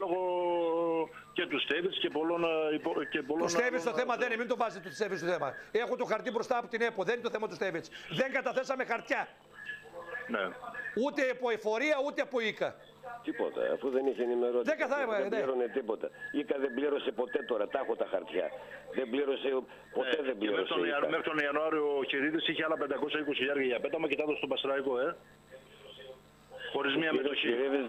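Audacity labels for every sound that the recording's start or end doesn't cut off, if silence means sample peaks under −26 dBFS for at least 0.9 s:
10.340000	25.100000	sound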